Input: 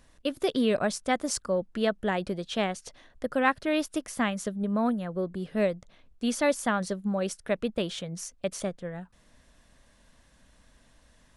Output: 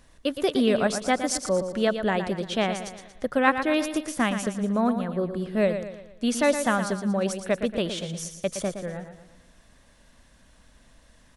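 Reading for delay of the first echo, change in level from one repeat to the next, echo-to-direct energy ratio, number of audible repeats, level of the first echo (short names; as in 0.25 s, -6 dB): 0.116 s, -7.0 dB, -8.0 dB, 4, -9.0 dB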